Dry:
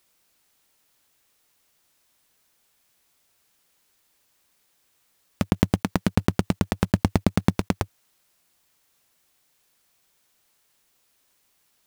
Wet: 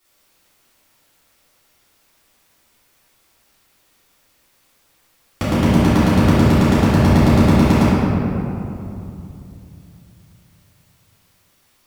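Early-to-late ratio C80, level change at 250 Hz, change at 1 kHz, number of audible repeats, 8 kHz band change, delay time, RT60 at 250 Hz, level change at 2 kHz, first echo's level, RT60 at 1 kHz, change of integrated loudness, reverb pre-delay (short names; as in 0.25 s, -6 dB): -1.5 dB, +11.0 dB, +11.0 dB, none, +6.5 dB, none, 3.4 s, +10.0 dB, none, 2.8 s, +10.0 dB, 3 ms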